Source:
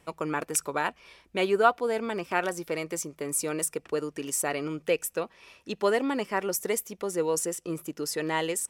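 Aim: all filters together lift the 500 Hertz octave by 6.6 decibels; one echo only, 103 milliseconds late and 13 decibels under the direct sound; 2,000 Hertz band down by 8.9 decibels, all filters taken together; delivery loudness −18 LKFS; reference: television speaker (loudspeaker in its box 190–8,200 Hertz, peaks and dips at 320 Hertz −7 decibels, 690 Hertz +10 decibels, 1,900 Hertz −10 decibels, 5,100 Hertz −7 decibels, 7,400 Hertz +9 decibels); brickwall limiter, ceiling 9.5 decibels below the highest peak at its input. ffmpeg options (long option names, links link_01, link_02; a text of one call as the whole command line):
ffmpeg -i in.wav -af "equalizer=frequency=500:width_type=o:gain=6,equalizer=frequency=2000:width_type=o:gain=-8,alimiter=limit=-16.5dB:level=0:latency=1,highpass=frequency=190:width=0.5412,highpass=frequency=190:width=1.3066,equalizer=frequency=320:width_type=q:width=4:gain=-7,equalizer=frequency=690:width_type=q:width=4:gain=10,equalizer=frequency=1900:width_type=q:width=4:gain=-10,equalizer=frequency=5100:width_type=q:width=4:gain=-7,equalizer=frequency=7400:width_type=q:width=4:gain=9,lowpass=frequency=8200:width=0.5412,lowpass=frequency=8200:width=1.3066,aecho=1:1:103:0.224,volume=9dB" out.wav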